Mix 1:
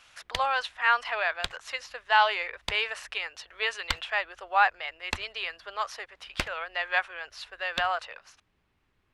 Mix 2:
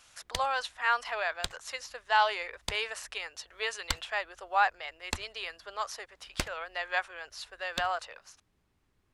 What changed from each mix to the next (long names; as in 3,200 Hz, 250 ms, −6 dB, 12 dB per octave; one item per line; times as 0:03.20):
master: add drawn EQ curve 290 Hz 0 dB, 2,700 Hz −6 dB, 7,300 Hz +5 dB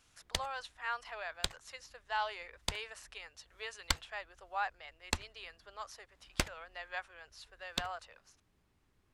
speech −10.5 dB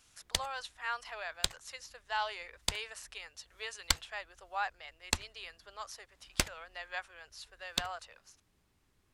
master: add high-shelf EQ 3,700 Hz +7 dB